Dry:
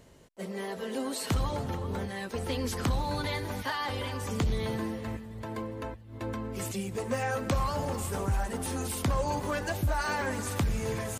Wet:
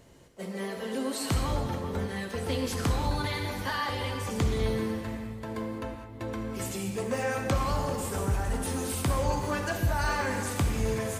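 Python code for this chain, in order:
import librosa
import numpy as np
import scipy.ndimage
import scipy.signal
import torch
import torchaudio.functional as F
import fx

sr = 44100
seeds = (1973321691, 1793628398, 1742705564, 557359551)

y = fx.rev_gated(x, sr, seeds[0], gate_ms=230, shape='flat', drr_db=3.0)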